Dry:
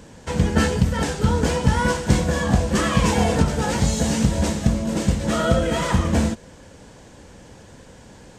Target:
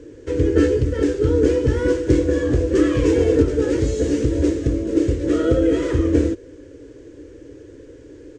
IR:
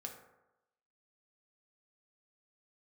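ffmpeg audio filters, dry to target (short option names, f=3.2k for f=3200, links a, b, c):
-af "firequalizer=gain_entry='entry(120,0);entry(190,-24);entry(290,13);entry(450,10);entry(750,-19);entry(1200,-9);entry(1700,-5);entry(4000,-10);entry(6500,-8);entry(13000,-25)':delay=0.05:min_phase=1"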